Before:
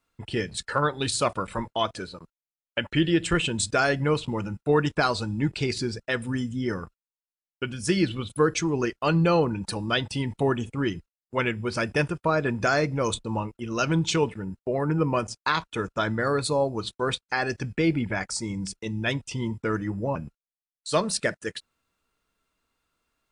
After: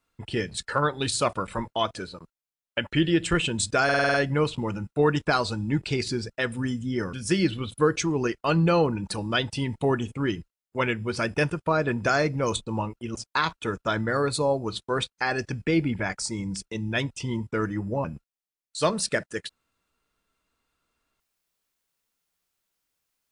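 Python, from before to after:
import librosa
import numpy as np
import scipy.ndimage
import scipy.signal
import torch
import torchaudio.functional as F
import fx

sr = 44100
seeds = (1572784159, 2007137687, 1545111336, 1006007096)

y = fx.edit(x, sr, fx.stutter(start_s=3.84, slice_s=0.05, count=7),
    fx.cut(start_s=6.83, length_s=0.88),
    fx.cut(start_s=13.73, length_s=1.53), tone=tone)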